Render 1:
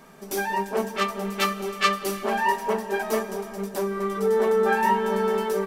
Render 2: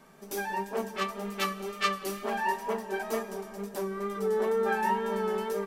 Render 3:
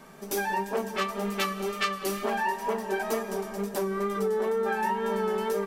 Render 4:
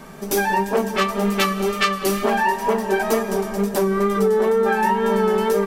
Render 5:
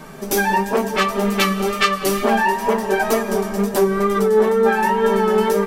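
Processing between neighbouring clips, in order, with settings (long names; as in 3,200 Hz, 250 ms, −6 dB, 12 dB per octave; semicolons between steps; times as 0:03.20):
tape wow and flutter 35 cents; level −6.5 dB
downward compressor, threshold −31 dBFS, peak gain reduction 9.5 dB; level +6.5 dB
low-shelf EQ 180 Hz +6.5 dB; level +8.5 dB
flanger 1 Hz, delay 6.3 ms, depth 3.8 ms, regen +56%; level +6.5 dB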